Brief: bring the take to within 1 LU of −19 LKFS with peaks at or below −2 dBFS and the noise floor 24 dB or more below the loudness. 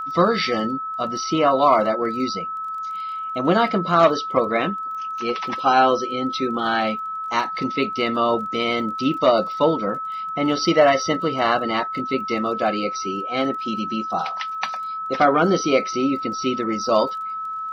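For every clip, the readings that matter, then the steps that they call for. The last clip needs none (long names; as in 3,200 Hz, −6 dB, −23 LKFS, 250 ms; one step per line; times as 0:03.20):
crackle rate 22 per second; interfering tone 1,300 Hz; level of the tone −26 dBFS; integrated loudness −21.5 LKFS; sample peak −5.0 dBFS; target loudness −19.0 LKFS
→ click removal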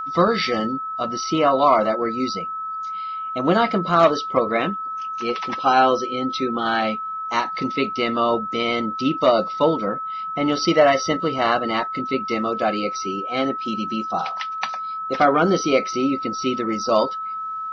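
crackle rate 0 per second; interfering tone 1,300 Hz; level of the tone −26 dBFS
→ notch filter 1,300 Hz, Q 30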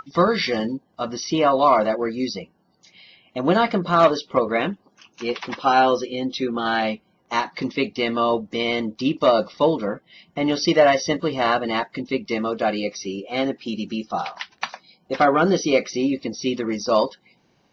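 interfering tone none found; integrated loudness −22.0 LKFS; sample peak −5.5 dBFS; target loudness −19.0 LKFS
→ level +3 dB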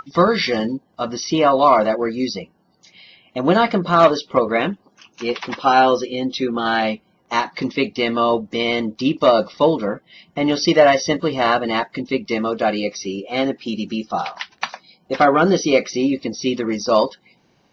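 integrated loudness −19.0 LKFS; sample peak −2.5 dBFS; background noise floor −61 dBFS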